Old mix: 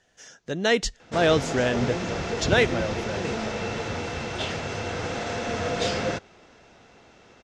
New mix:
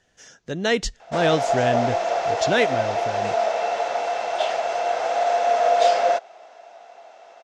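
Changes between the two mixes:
background: add high-pass with resonance 680 Hz, resonance Q 7
master: add low-shelf EQ 190 Hz +3 dB

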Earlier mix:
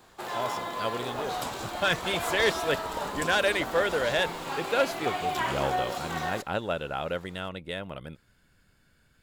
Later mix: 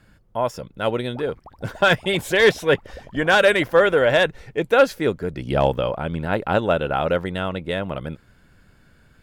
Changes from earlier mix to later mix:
speech +11.5 dB
first sound: muted
master: add high-shelf EQ 2,300 Hz −8.5 dB

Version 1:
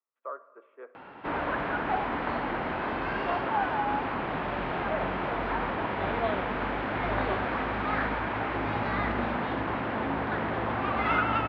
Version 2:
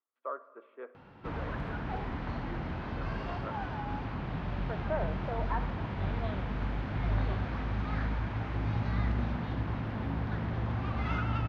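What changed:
background −11.5 dB
master: remove three-way crossover with the lows and the highs turned down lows −19 dB, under 280 Hz, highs −21 dB, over 3,600 Hz

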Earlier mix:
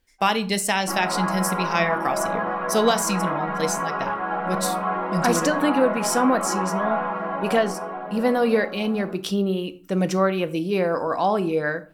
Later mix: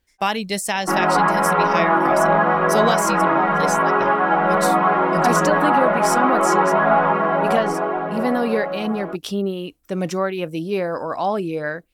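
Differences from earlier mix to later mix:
background +11.5 dB
reverb: off

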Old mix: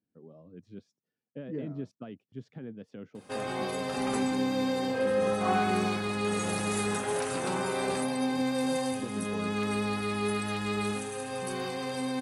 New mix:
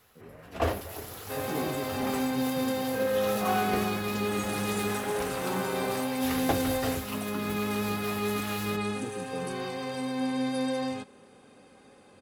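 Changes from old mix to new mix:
first sound: unmuted
second sound: entry −2.00 s
master: add high-shelf EQ 8,000 Hz −7 dB

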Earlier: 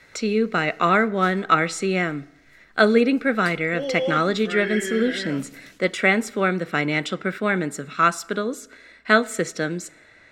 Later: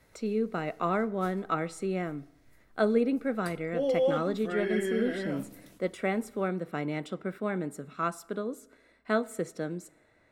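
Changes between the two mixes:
speech −8.0 dB
master: add flat-topped bell 3,200 Hz −9.5 dB 2.7 octaves

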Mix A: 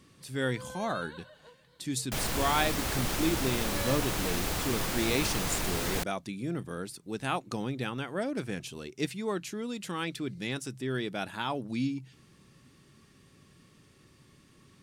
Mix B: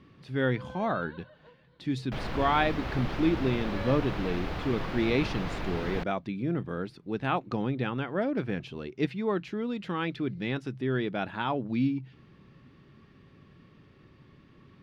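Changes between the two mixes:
speech +4.5 dB
master: add high-frequency loss of the air 320 metres

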